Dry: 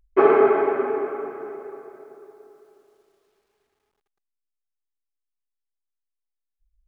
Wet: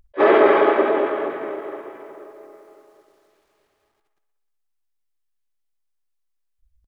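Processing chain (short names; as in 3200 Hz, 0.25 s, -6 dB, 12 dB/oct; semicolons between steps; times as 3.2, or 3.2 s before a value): dynamic EQ 150 Hz, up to -5 dB, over -43 dBFS, Q 2.5; limiter -11 dBFS, peak gain reduction 7.5 dB; on a send: band-limited delay 61 ms, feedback 71%, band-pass 1200 Hz, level -8 dB; on the sum: harmoniser -4 st -8 dB, +5 st -8 dB, +7 st -4 dB; attack slew limiter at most 520 dB/s; gain +3 dB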